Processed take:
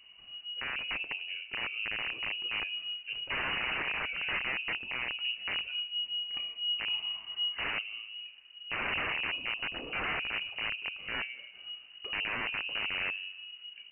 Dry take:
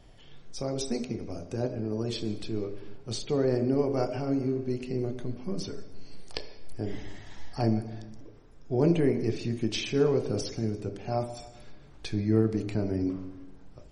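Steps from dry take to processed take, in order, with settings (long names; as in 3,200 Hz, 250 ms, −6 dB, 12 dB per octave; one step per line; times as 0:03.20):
wrap-around overflow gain 23.5 dB
voice inversion scrambler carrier 2,900 Hz
level −4 dB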